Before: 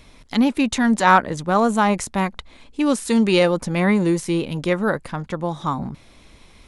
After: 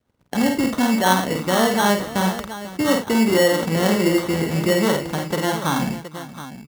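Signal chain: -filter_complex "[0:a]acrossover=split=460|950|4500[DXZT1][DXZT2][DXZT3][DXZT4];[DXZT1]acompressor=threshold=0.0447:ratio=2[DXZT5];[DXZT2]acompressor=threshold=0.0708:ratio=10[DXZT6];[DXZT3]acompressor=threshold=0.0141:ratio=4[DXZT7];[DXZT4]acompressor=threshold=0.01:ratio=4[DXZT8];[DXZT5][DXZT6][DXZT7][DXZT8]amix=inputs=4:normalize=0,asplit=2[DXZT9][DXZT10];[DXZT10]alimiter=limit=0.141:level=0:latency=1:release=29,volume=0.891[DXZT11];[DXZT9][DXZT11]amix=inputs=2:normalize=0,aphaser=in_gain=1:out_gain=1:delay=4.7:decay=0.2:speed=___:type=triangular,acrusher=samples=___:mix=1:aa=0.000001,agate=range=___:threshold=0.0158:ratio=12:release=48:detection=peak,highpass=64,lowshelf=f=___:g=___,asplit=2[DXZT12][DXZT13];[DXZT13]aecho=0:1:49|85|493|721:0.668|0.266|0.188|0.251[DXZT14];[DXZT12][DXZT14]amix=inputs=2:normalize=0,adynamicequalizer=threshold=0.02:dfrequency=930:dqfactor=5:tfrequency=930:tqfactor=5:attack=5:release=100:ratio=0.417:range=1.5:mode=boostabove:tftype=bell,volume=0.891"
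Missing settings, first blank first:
0.42, 18, 0.0355, 85, -5.5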